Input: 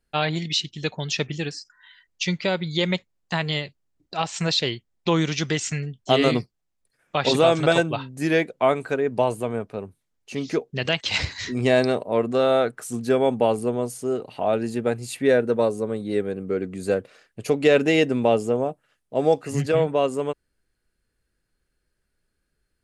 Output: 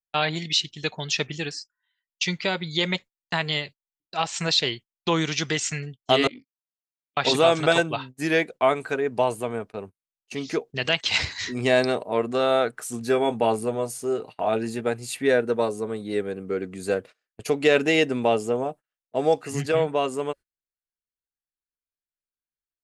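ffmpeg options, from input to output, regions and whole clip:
ffmpeg -i in.wav -filter_complex "[0:a]asettb=1/sr,asplit=3[link_01][link_02][link_03];[link_01]atrim=end=6.274[link_04];[link_02]atrim=start=6.27:end=7.17,asetpts=PTS-STARTPTS,afade=type=in:duration=0.004:curve=qsin,afade=type=out:start_time=0.896:duration=0.004:curve=qsin,tremolo=f=47:d=0.919,asplit=3[link_05][link_06][link_07];[link_05]bandpass=frequency=270:width_type=q:width=8,volume=0dB[link_08];[link_06]bandpass=frequency=2290:width_type=q:width=8,volume=-6dB[link_09];[link_07]bandpass=frequency=3010:width_type=q:width=8,volume=-9dB[link_10];[link_08][link_09][link_10]amix=inputs=3:normalize=0,acompressor=threshold=-38dB:ratio=3:attack=3.2:release=140:knee=1:detection=peak[link_11];[link_03]atrim=start=7.166[link_12];[link_04][link_11]acrossfade=duration=0.004:curve1=hsin:curve2=qsin[link_13];[link_13][link_12]acrossfade=duration=0.004:curve1=qsin:curve2=hsin,asettb=1/sr,asplit=3[link_14][link_15][link_16];[link_14]atrim=end=12.994[link_17];[link_15]atrim=start=12.99:end=14.81,asetpts=PTS-STARTPTS,afade=type=in:duration=0.004:curve=qsin,afade=type=out:start_time=1.816:duration=0.004:curve=qsin,bandreject=frequency=3100:width=25,asplit=2[link_18][link_19];[link_19]adelay=18,volume=-9.5dB[link_20];[link_18][link_20]amix=inputs=2:normalize=0,atrim=end_sample=80262[link_21];[link_16]atrim=start=14.806[link_22];[link_17][link_21]acrossfade=duration=0.004:curve1=hsin:curve2=qsin[link_23];[link_23][link_22]acrossfade=duration=0.004:curve1=qsin:curve2=hsin,lowshelf=frequency=400:gain=-7,bandreject=frequency=550:width=12,agate=range=-27dB:threshold=-40dB:ratio=16:detection=peak,volume=1.5dB" out.wav

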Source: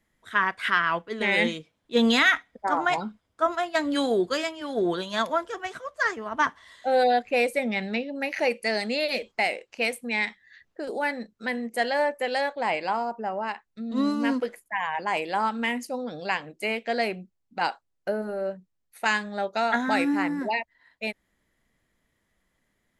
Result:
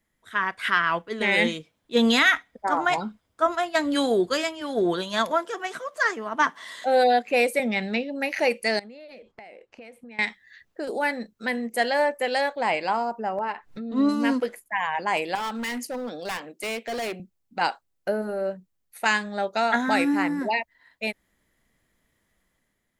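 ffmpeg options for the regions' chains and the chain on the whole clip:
ffmpeg -i in.wav -filter_complex "[0:a]asettb=1/sr,asplit=3[link_01][link_02][link_03];[link_01]atrim=end=5.314[link_04];[link_02]atrim=start=5.31:end=7.6,asetpts=PTS-STARTPTS,afade=type=in:duration=0.004:curve=qsin,afade=type=out:start_time=2.286:duration=0.004:curve=qsin,highpass=frequency=160:width=0.5412,highpass=frequency=160:width=1.3066,acompressor=mode=upward:threshold=-31dB:ratio=2.5:attack=3.2:release=140:knee=2.83:detection=peak[link_05];[link_03]atrim=start=7.596[link_06];[link_04][link_05]acrossfade=duration=0.004:curve1=hsin:curve2=qsin[link_07];[link_07][link_06]acrossfade=duration=0.004:curve1=qsin:curve2=hsin,asettb=1/sr,asplit=3[link_08][link_09][link_10];[link_08]atrim=end=8.794[link_11];[link_09]atrim=start=8.79:end=10.19,asetpts=PTS-STARTPTS,afade=type=in:duration=0.004:curve=qsin,afade=type=out:start_time=1.396:duration=0.004:curve=qsin,lowpass=frequency=1100:poles=1,acompressor=threshold=-43dB:ratio=10:attack=3.2:release=140:knee=1:detection=peak[link_12];[link_10]atrim=start=10.186[link_13];[link_11][link_12]acrossfade=duration=0.004:curve1=hsin:curve2=qsin[link_14];[link_14][link_13]acrossfade=duration=0.004:curve1=qsin:curve2=hsin,asettb=1/sr,asplit=3[link_15][link_16][link_17];[link_15]atrim=end=13.384[link_18];[link_16]atrim=start=13.38:end=14.09,asetpts=PTS-STARTPTS,afade=type=in:duration=0.004:curve=qsin,afade=type=out:start_time=0.706:duration=0.004:curve=qsin,lowpass=frequency=1700:poles=1,acompressor=mode=upward:threshold=-28dB:ratio=2.5:attack=3.2:release=140:knee=2.83:detection=peak,aecho=1:1:6.8:0.37,atrim=end_sample=31311[link_19];[link_17]atrim=start=14.086[link_20];[link_18][link_19]acrossfade=duration=0.004:curve1=hsin:curve2=qsin[link_21];[link_21][link_20]acrossfade=duration=0.004:curve1=qsin:curve2=hsin,asettb=1/sr,asplit=3[link_22][link_23][link_24];[link_22]atrim=end=15.354[link_25];[link_23]atrim=start=15.35:end=17.2,asetpts=PTS-STARTPTS,afade=type=in:duration=0.004:curve=qsin,afade=type=out:start_time=1.846:duration=0.004:curve=qsin,highpass=frequency=200:width=0.5412,highpass=frequency=200:width=1.3066,asoftclip=type=hard:threshold=-29.5dB[link_26];[link_24]atrim=start=17.196[link_27];[link_25][link_26]acrossfade=duration=0.004:curve1=hsin:curve2=qsin[link_28];[link_28][link_27]acrossfade=duration=0.004:curve1=qsin:curve2=hsin,highshelf=frequency=10000:gain=7,dynaudnorm=framelen=120:gausssize=9:maxgain=5.5dB,volume=-3.5dB" out.wav

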